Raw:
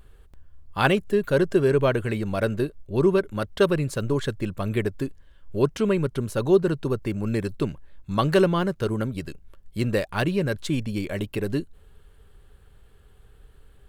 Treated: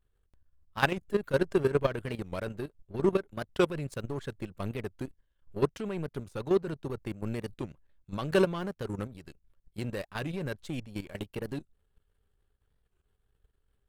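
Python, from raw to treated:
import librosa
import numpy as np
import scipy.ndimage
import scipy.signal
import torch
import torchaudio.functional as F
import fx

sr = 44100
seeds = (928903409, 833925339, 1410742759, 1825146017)

y = fx.level_steps(x, sr, step_db=9)
y = fx.power_curve(y, sr, exponent=1.4)
y = fx.record_warp(y, sr, rpm=45.0, depth_cents=160.0)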